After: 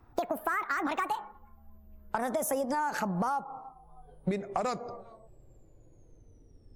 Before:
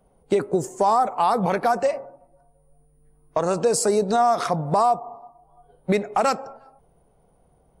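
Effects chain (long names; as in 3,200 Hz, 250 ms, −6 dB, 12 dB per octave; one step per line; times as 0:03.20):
gliding playback speed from 176% → 55%
low-shelf EQ 160 Hz +10 dB
downward compressor 6 to 1, threshold −25 dBFS, peak gain reduction 11.5 dB
level −3 dB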